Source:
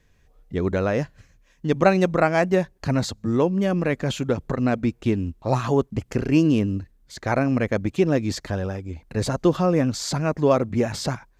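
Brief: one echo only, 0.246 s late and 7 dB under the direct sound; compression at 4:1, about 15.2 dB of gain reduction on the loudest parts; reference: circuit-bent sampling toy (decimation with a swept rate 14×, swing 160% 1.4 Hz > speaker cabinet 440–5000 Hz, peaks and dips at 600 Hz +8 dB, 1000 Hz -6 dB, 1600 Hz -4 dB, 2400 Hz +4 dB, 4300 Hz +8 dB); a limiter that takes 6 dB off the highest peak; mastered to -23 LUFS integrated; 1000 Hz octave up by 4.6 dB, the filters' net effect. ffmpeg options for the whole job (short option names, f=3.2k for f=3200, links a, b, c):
-af "equalizer=f=1k:t=o:g=8,acompressor=threshold=-27dB:ratio=4,alimiter=limit=-20.5dB:level=0:latency=1,aecho=1:1:246:0.447,acrusher=samples=14:mix=1:aa=0.000001:lfo=1:lforange=22.4:lforate=1.4,highpass=440,equalizer=f=600:t=q:w=4:g=8,equalizer=f=1k:t=q:w=4:g=-6,equalizer=f=1.6k:t=q:w=4:g=-4,equalizer=f=2.4k:t=q:w=4:g=4,equalizer=f=4.3k:t=q:w=4:g=8,lowpass=f=5k:w=0.5412,lowpass=f=5k:w=1.3066,volume=10dB"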